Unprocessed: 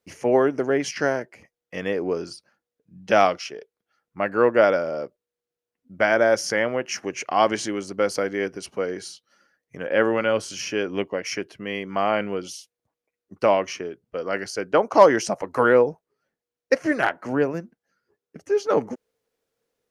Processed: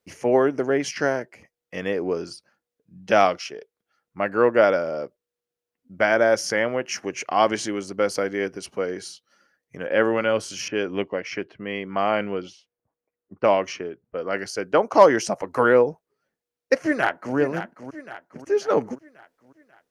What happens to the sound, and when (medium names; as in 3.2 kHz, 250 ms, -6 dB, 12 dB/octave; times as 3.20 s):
10.68–14.39 s: level-controlled noise filter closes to 1.4 kHz, open at -17 dBFS
16.74–17.36 s: echo throw 540 ms, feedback 50%, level -10.5 dB